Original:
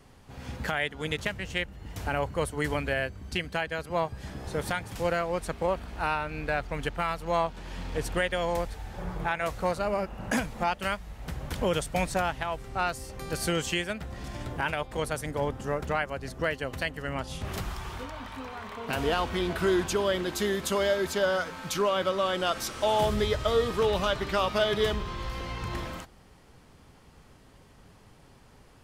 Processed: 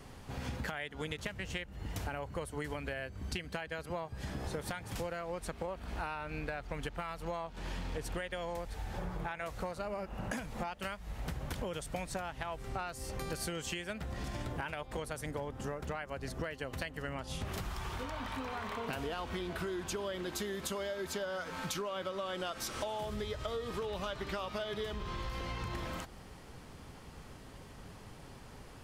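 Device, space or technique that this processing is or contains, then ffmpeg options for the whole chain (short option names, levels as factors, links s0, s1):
serial compression, leveller first: -af "acompressor=threshold=0.0355:ratio=2,acompressor=threshold=0.01:ratio=6,volume=1.58"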